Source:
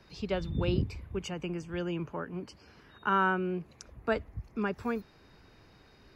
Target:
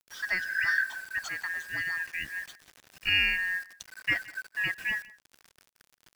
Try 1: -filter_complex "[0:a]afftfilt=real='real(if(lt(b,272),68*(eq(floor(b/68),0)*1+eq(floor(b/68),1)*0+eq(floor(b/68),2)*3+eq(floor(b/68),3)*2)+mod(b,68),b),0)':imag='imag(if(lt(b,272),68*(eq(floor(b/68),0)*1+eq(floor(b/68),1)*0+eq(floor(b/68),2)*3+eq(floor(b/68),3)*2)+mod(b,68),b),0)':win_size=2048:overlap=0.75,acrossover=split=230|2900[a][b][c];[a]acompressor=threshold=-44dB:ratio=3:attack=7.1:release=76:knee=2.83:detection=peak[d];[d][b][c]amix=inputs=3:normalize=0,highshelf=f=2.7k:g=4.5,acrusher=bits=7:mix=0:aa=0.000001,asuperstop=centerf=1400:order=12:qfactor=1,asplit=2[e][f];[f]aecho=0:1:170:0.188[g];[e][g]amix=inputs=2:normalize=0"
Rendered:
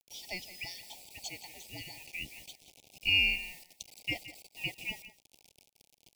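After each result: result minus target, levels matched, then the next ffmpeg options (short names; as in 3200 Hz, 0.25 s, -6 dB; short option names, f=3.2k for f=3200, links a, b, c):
echo-to-direct +7 dB; 1000 Hz band -3.5 dB
-filter_complex "[0:a]afftfilt=real='real(if(lt(b,272),68*(eq(floor(b/68),0)*1+eq(floor(b/68),1)*0+eq(floor(b/68),2)*3+eq(floor(b/68),3)*2)+mod(b,68),b),0)':imag='imag(if(lt(b,272),68*(eq(floor(b/68),0)*1+eq(floor(b/68),1)*0+eq(floor(b/68),2)*3+eq(floor(b/68),3)*2)+mod(b,68),b),0)':win_size=2048:overlap=0.75,acrossover=split=230|2900[a][b][c];[a]acompressor=threshold=-44dB:ratio=3:attack=7.1:release=76:knee=2.83:detection=peak[d];[d][b][c]amix=inputs=3:normalize=0,highshelf=f=2.7k:g=4.5,acrusher=bits=7:mix=0:aa=0.000001,asuperstop=centerf=1400:order=12:qfactor=1,asplit=2[e][f];[f]aecho=0:1:170:0.0841[g];[e][g]amix=inputs=2:normalize=0"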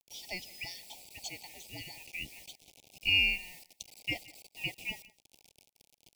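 1000 Hz band -3.5 dB
-filter_complex "[0:a]afftfilt=real='real(if(lt(b,272),68*(eq(floor(b/68),0)*1+eq(floor(b/68),1)*0+eq(floor(b/68),2)*3+eq(floor(b/68),3)*2)+mod(b,68),b),0)':imag='imag(if(lt(b,272),68*(eq(floor(b/68),0)*1+eq(floor(b/68),1)*0+eq(floor(b/68),2)*3+eq(floor(b/68),3)*2)+mod(b,68),b),0)':win_size=2048:overlap=0.75,acrossover=split=230|2900[a][b][c];[a]acompressor=threshold=-44dB:ratio=3:attack=7.1:release=76:knee=2.83:detection=peak[d];[d][b][c]amix=inputs=3:normalize=0,highshelf=f=2.7k:g=4.5,acrusher=bits=7:mix=0:aa=0.000001,asplit=2[e][f];[f]aecho=0:1:170:0.0841[g];[e][g]amix=inputs=2:normalize=0"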